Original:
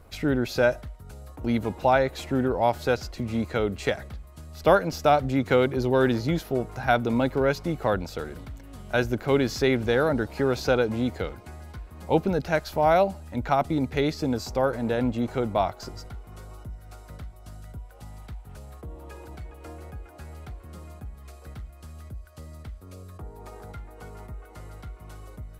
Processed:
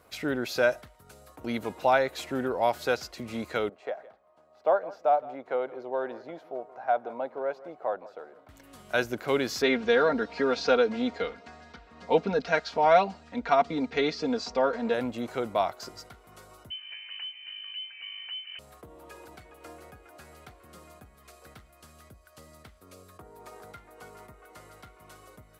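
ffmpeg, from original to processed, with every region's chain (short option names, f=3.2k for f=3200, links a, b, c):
-filter_complex "[0:a]asettb=1/sr,asplit=3[a][b][c];[a]atrim=end=3.694[d];[b]atrim=start=3.69:end=8.49,asetpts=PTS-STARTPTS,afade=t=in:d=0.004:c=qsin,afade=t=out:st=4.796:d=0.004:c=qsin,bandpass=f=690:t=q:w=2.1,aecho=1:1:164:0.119,atrim=end_sample=211680[e];[c]atrim=start=8.486[f];[d][e]acrossfade=d=0.004:c1=hsin:c2=qsin[g];[g][f]acrossfade=d=0.004:c1=qsin:c2=hsin,asettb=1/sr,asplit=3[h][i][j];[h]atrim=end=9.624[k];[i]atrim=start=9.62:end=14.94,asetpts=PTS-STARTPTS,afade=t=in:d=0.004:c=qsin,afade=t=out:st=5.316:d=0.004:c=qsin,lowpass=f=5.7k:w=0.5412,lowpass=f=5.7k:w=1.3066,aecho=1:1:4.3:0.78,atrim=end_sample=234612[l];[j]atrim=start=14.936[m];[k][l]acrossfade=d=0.004:c1=hsin:c2=qsin[n];[n][m]acrossfade=d=0.004:c1=qsin:c2=hsin,asettb=1/sr,asplit=3[o][p][q];[o]atrim=end=16.704[r];[p]atrim=start=16.7:end=18.59,asetpts=PTS-STARTPTS,afade=t=in:d=0.004:c=qsin,afade=t=out:st=1.886:d=0.004:c=qsin,equalizer=f=820:w=2.8:g=10,lowpass=f=2.6k:t=q:w=0.5098,lowpass=f=2.6k:t=q:w=0.6013,lowpass=f=2.6k:t=q:w=0.9,lowpass=f=2.6k:t=q:w=2.563,afreqshift=-3100[s];[q]atrim=start=18.586[t];[r][s]acrossfade=d=0.004:c1=hsin:c2=qsin[u];[u][t]acrossfade=d=0.004:c1=qsin:c2=hsin,highpass=f=500:p=1,bandreject=f=840:w=20"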